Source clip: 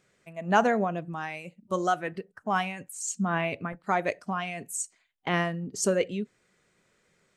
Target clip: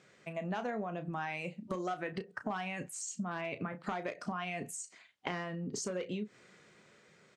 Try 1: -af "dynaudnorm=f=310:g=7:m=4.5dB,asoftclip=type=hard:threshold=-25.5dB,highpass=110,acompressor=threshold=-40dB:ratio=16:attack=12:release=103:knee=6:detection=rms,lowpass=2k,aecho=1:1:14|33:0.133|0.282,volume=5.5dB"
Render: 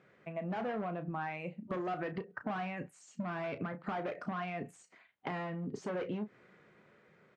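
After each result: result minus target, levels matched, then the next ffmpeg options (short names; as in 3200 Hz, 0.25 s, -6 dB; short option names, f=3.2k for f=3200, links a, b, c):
8000 Hz band -18.0 dB; hard clip: distortion +13 dB
-af "dynaudnorm=f=310:g=7:m=4.5dB,asoftclip=type=hard:threshold=-25.5dB,highpass=110,acompressor=threshold=-40dB:ratio=16:attack=12:release=103:knee=6:detection=rms,lowpass=6.3k,aecho=1:1:14|33:0.133|0.282,volume=5.5dB"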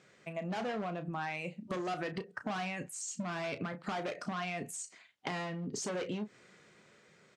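hard clip: distortion +13 dB
-af "dynaudnorm=f=310:g=7:m=4.5dB,asoftclip=type=hard:threshold=-14.5dB,highpass=110,acompressor=threshold=-40dB:ratio=16:attack=12:release=103:knee=6:detection=rms,lowpass=6.3k,aecho=1:1:14|33:0.133|0.282,volume=5.5dB"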